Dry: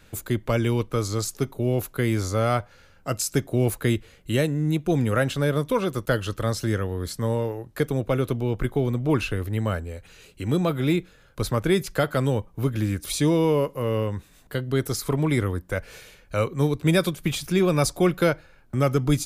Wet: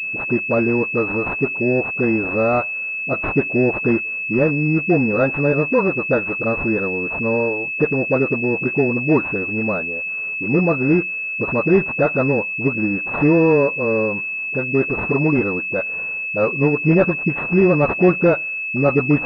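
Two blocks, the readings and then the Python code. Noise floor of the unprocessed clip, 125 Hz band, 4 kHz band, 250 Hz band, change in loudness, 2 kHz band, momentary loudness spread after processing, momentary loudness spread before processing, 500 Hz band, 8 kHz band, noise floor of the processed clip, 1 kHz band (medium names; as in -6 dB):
-54 dBFS, +0.5 dB, under -15 dB, +6.5 dB, +6.5 dB, +13.5 dB, 6 LU, 9 LU, +7.0 dB, under -25 dB, -26 dBFS, +4.5 dB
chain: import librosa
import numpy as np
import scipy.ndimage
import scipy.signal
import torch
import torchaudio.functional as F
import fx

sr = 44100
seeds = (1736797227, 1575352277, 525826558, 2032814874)

y = scipy.signal.sosfilt(scipy.signal.butter(4, 160.0, 'highpass', fs=sr, output='sos'), x)
y = fx.dispersion(y, sr, late='highs', ms=40.0, hz=470.0)
y = fx.pwm(y, sr, carrier_hz=2600.0)
y = y * librosa.db_to_amplitude(7.0)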